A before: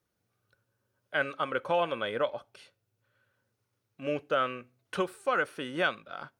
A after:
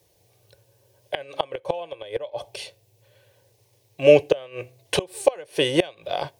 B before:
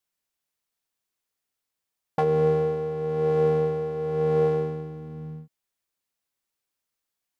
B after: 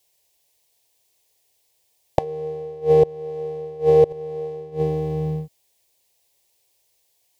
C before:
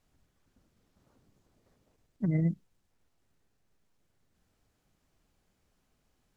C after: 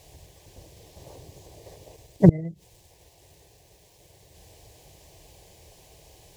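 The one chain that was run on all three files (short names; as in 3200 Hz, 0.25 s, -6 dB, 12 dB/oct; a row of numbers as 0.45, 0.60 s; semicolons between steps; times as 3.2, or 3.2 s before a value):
HPF 55 Hz 12 dB/oct; flipped gate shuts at -21 dBFS, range -25 dB; fixed phaser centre 560 Hz, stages 4; normalise peaks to -1.5 dBFS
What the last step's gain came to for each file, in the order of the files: +20.5, +18.5, +26.5 dB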